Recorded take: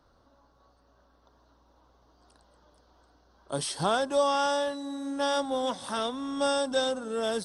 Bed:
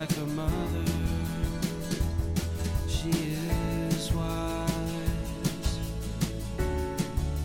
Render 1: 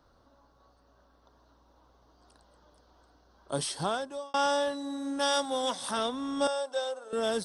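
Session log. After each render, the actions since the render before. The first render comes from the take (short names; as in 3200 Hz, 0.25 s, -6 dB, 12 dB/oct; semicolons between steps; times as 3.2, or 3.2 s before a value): 3.6–4.34 fade out; 5.19–5.91 tilt +2 dB/oct; 6.47–7.13 ladder high-pass 440 Hz, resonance 35%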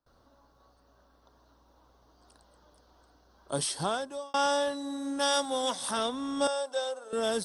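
gate with hold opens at -56 dBFS; high shelf 9100 Hz +7.5 dB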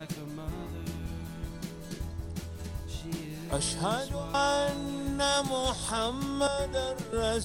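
add bed -8.5 dB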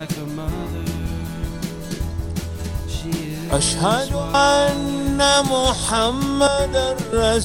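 gain +12 dB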